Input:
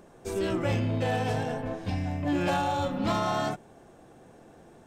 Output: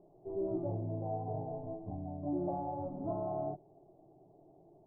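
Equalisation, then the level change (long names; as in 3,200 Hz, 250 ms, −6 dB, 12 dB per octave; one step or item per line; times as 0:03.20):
transistor ladder low-pass 670 Hz, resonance 55%
high-frequency loss of the air 350 metres
phaser with its sweep stopped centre 340 Hz, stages 8
+2.5 dB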